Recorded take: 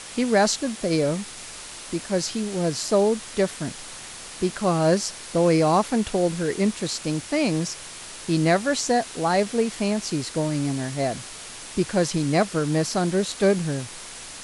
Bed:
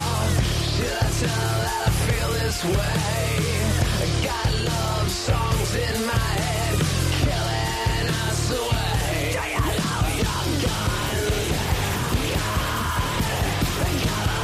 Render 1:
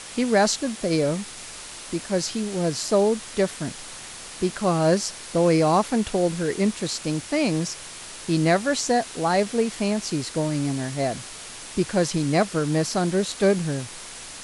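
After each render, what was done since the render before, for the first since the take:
no processing that can be heard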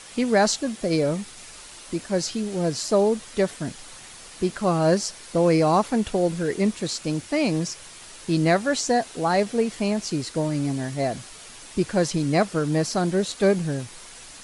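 broadband denoise 6 dB, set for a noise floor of −39 dBFS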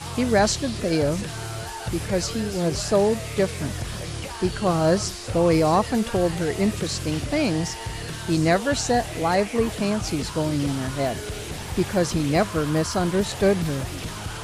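mix in bed −9.5 dB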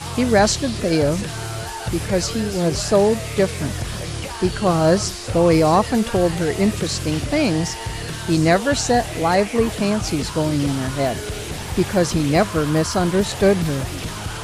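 level +4 dB

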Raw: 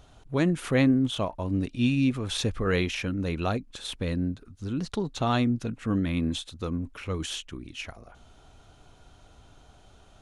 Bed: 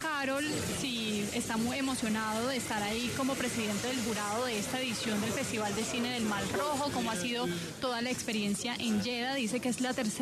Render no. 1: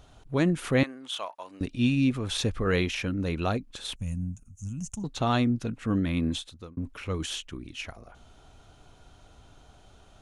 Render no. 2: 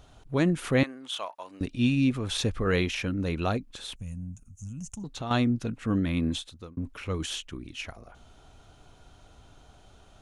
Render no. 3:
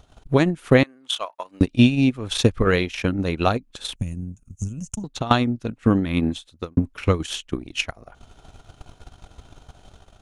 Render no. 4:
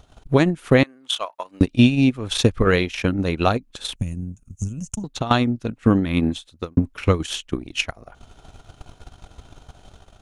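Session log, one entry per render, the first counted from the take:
0:00.83–0:01.61: high-pass filter 910 Hz; 0:03.96–0:05.04: drawn EQ curve 100 Hz 0 dB, 210 Hz −4 dB, 400 Hz −29 dB, 680 Hz −12 dB, 1,700 Hz −20 dB, 2,700 Hz −9 dB, 4,100 Hz −29 dB, 6,500 Hz +13 dB, 12,000 Hz +2 dB; 0:06.35–0:06.77: fade out linear
0:03.64–0:05.31: downward compressor 2 to 1, threshold −37 dBFS
transient designer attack +12 dB, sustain −10 dB; automatic gain control gain up to 5 dB
level +1.5 dB; brickwall limiter −3 dBFS, peak gain reduction 2.5 dB

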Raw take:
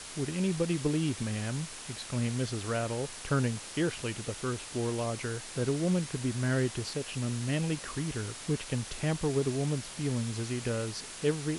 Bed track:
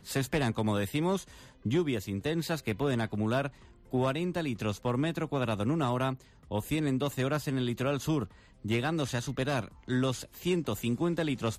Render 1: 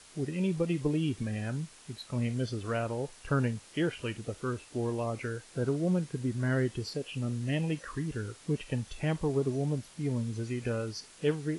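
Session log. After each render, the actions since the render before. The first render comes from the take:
noise reduction from a noise print 11 dB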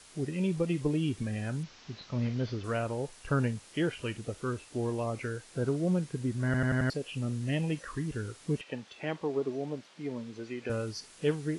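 0:01.63–0:02.64: linear delta modulator 32 kbit/s, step −48 dBFS
0:06.45: stutter in place 0.09 s, 5 plays
0:08.61–0:10.70: band-pass filter 280–4,400 Hz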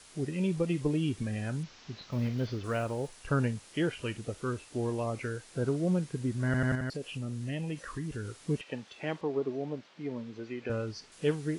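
0:01.96–0:03.19: one scale factor per block 7 bits
0:06.75–0:08.37: downward compressor 2 to 1, threshold −34 dBFS
0:09.21–0:11.12: high-frequency loss of the air 95 metres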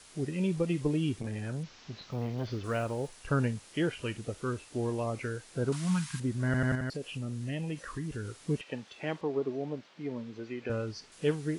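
0:01.17–0:02.51: saturating transformer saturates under 380 Hz
0:05.72–0:06.20: drawn EQ curve 210 Hz 0 dB, 310 Hz −12 dB, 450 Hz −29 dB, 970 Hz +10 dB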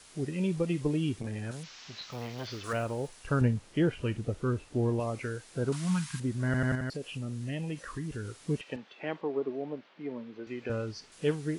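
0:01.51–0:02.73: tilt shelving filter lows −7 dB, about 730 Hz
0:03.41–0:05.00: spectral tilt −2 dB per octave
0:08.76–0:10.47: band-pass filter 200–3,300 Hz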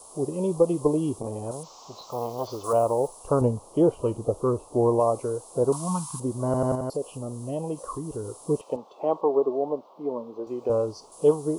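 drawn EQ curve 210 Hz 0 dB, 510 Hz +13 dB, 1,100 Hz +14 dB, 1,700 Hz −26 dB, 3,000 Hz −9 dB, 11,000 Hz +13 dB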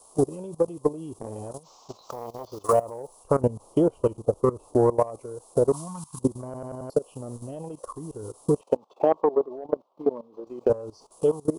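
transient designer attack +12 dB, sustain −2 dB
output level in coarse steps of 18 dB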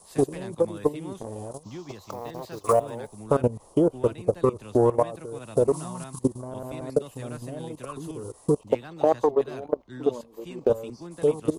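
mix in bed track −11.5 dB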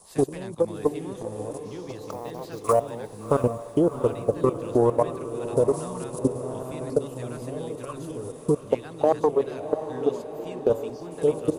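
feedback delay with all-pass diffusion 704 ms, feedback 56%, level −10.5 dB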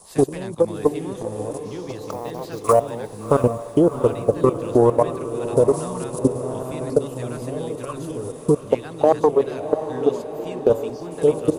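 level +5 dB
brickwall limiter −3 dBFS, peak gain reduction 1 dB

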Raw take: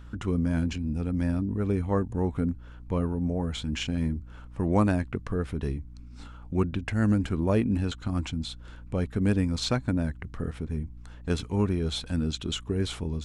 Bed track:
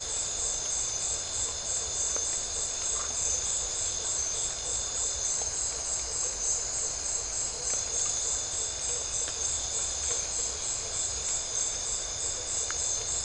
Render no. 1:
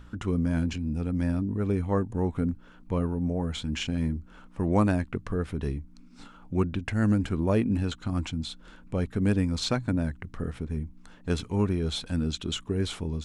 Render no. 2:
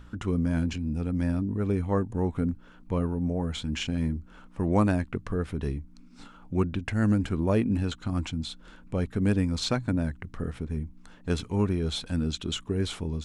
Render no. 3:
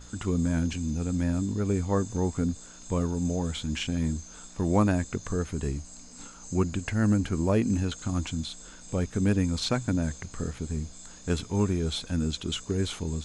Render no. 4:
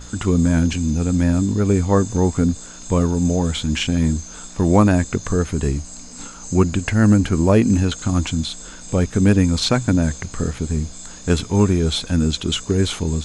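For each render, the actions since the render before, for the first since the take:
hum removal 60 Hz, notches 2
no processing that can be heard
mix in bed track −17 dB
level +10 dB; brickwall limiter −3 dBFS, peak gain reduction 2 dB

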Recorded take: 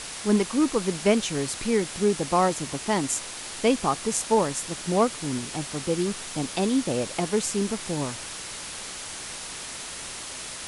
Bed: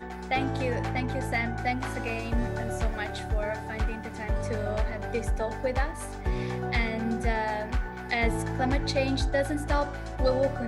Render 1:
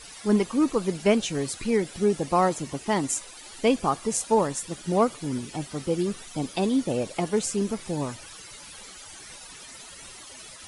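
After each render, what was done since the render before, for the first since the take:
broadband denoise 14 dB, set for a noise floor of −37 dBFS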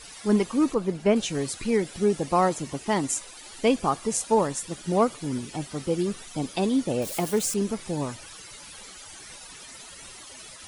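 0:00.74–0:01.16: high-shelf EQ 2,600 Hz −10.5 dB
0:07.02–0:07.54: spike at every zero crossing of −29.5 dBFS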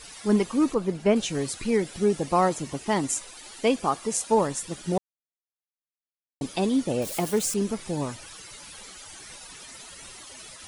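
0:03.51–0:04.30: low-shelf EQ 140 Hz −8.5 dB
0:04.98–0:06.41: silence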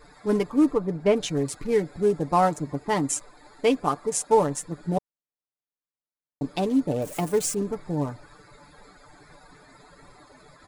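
adaptive Wiener filter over 15 samples
comb filter 6.8 ms, depth 54%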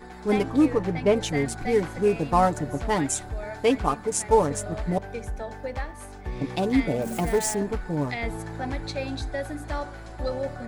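mix in bed −4.5 dB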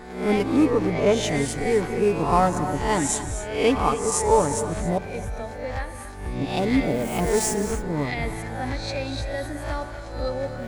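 peak hold with a rise ahead of every peak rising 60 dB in 0.58 s
reverb whose tail is shaped and stops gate 300 ms rising, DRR 10 dB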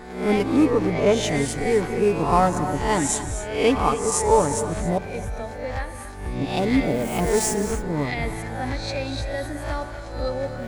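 level +1 dB

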